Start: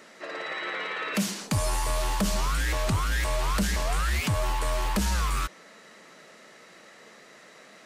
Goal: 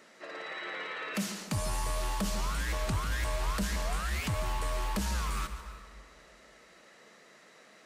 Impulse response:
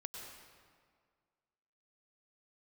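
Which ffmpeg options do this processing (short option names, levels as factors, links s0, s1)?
-filter_complex "[0:a]asplit=2[s0][s1];[1:a]atrim=start_sample=2205,adelay=143[s2];[s1][s2]afir=irnorm=-1:irlink=0,volume=0.447[s3];[s0][s3]amix=inputs=2:normalize=0,volume=0.473"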